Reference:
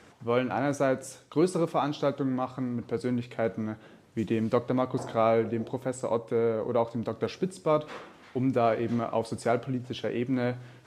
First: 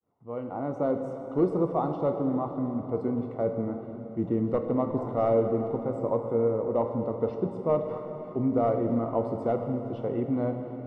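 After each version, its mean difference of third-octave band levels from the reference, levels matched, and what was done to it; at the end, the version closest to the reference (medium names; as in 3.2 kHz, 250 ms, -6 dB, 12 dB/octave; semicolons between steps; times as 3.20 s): 8.0 dB: fade-in on the opening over 0.99 s; wavefolder -16 dBFS; Savitzky-Golay filter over 65 samples; plate-style reverb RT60 4.2 s, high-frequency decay 0.8×, DRR 5 dB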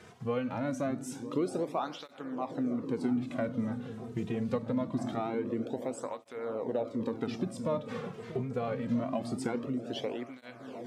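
5.0 dB: peaking EQ 250 Hz +6 dB 0.23 oct; compression 3:1, threshold -33 dBFS, peak gain reduction 11.5 dB; on a send: delay with an opening low-pass 320 ms, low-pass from 200 Hz, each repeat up 1 oct, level -6 dB; on the sum: cancelling through-zero flanger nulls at 0.24 Hz, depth 3.7 ms; trim +3.5 dB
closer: second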